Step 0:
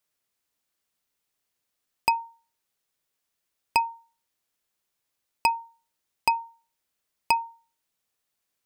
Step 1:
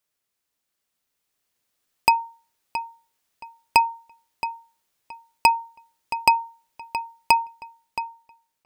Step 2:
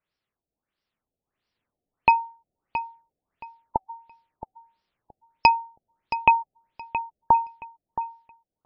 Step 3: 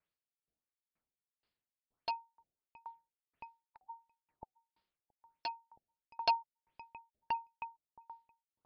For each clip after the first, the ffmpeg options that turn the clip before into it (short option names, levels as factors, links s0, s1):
-filter_complex "[0:a]dynaudnorm=f=320:g=9:m=3.76,asplit=2[s0][s1];[s1]adelay=672,lowpass=f=4600:p=1,volume=0.282,asplit=2[s2][s3];[s3]adelay=672,lowpass=f=4600:p=1,volume=0.23,asplit=2[s4][s5];[s5]adelay=672,lowpass=f=4600:p=1,volume=0.23[s6];[s0][s2][s4][s6]amix=inputs=4:normalize=0"
-af "lowshelf=f=240:g=5.5,afftfilt=real='re*lt(b*sr/1024,760*pow(5900/760,0.5+0.5*sin(2*PI*1.5*pts/sr)))':imag='im*lt(b*sr/1024,760*pow(5900/760,0.5+0.5*sin(2*PI*1.5*pts/sr)))':win_size=1024:overlap=0.75"
-af "aresample=11025,aeval=exprs='0.251*(abs(mod(val(0)/0.251+3,4)-2)-1)':c=same,aresample=44100,aeval=exprs='val(0)*pow(10,-38*if(lt(mod(2.1*n/s,1),2*abs(2.1)/1000),1-mod(2.1*n/s,1)/(2*abs(2.1)/1000),(mod(2.1*n/s,1)-2*abs(2.1)/1000)/(1-2*abs(2.1)/1000))/20)':c=same,volume=0.841"